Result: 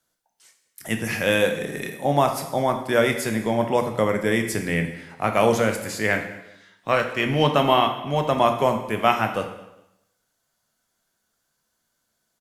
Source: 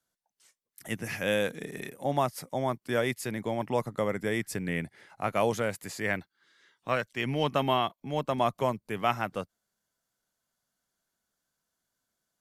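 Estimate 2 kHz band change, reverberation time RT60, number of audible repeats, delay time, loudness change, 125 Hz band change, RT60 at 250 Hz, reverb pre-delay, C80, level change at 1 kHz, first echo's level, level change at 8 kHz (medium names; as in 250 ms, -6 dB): +9.0 dB, 0.90 s, 2, 206 ms, +8.5 dB, +7.5 dB, 0.85 s, 6 ms, 11.0 dB, +8.5 dB, -23.0 dB, +8.5 dB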